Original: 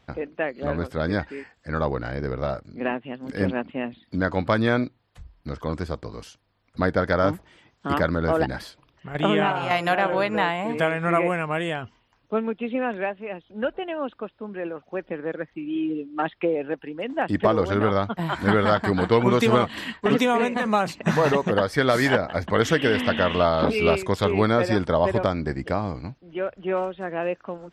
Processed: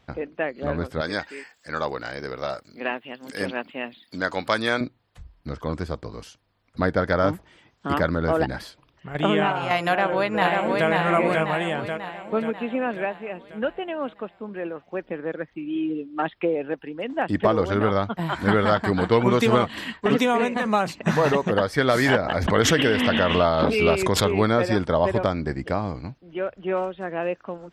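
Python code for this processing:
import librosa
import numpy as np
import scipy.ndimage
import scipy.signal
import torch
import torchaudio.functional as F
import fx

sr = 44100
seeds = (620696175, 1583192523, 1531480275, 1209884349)

y = fx.riaa(x, sr, side='recording', at=(1.01, 4.81))
y = fx.echo_throw(y, sr, start_s=9.87, length_s=1.02, ms=540, feedback_pct=55, wet_db=-2.5)
y = fx.pre_swell(y, sr, db_per_s=44.0, at=(21.91, 24.37))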